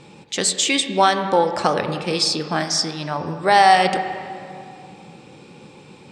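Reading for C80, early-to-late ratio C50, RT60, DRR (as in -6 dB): 9.0 dB, 8.0 dB, 2.4 s, 7.0 dB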